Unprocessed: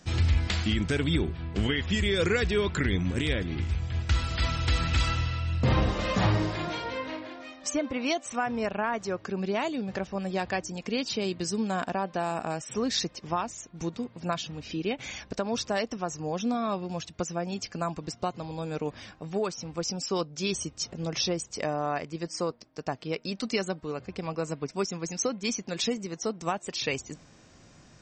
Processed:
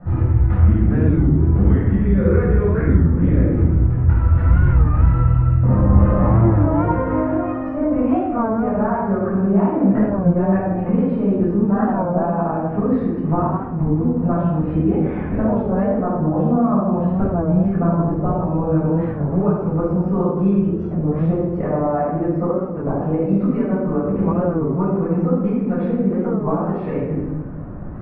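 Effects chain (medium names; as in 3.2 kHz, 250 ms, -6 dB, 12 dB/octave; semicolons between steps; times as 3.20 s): compression 5:1, threshold -36 dBFS, peak gain reduction 15 dB; low-pass 1.4 kHz 24 dB/octave; tilt EQ -1.5 dB/octave; simulated room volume 680 m³, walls mixed, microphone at 6.7 m; warped record 33 1/3 rpm, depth 160 cents; trim +4.5 dB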